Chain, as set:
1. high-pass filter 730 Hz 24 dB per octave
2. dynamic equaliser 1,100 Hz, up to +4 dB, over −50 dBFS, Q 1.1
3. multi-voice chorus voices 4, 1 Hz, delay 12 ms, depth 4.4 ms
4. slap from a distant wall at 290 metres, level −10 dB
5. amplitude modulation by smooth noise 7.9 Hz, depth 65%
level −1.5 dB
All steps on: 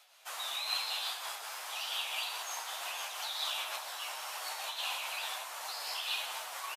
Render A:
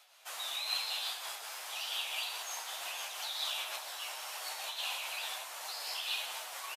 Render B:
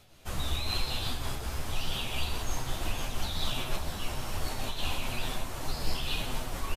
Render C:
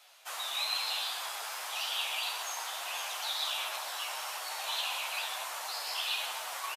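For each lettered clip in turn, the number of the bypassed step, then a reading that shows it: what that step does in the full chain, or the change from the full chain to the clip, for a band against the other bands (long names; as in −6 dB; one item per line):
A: 2, 1 kHz band −2.5 dB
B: 1, 500 Hz band +8.5 dB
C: 5, change in crest factor −1.5 dB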